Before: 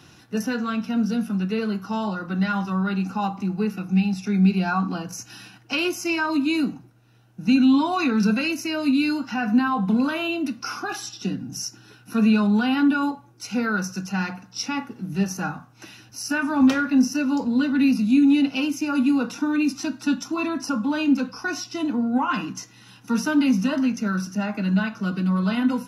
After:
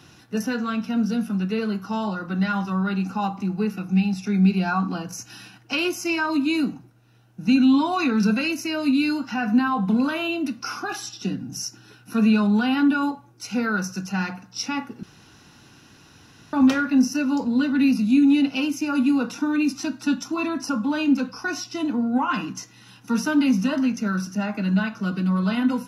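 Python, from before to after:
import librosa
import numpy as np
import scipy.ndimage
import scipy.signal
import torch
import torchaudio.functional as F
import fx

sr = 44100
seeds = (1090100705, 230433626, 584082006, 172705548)

y = fx.edit(x, sr, fx.room_tone_fill(start_s=15.03, length_s=1.5), tone=tone)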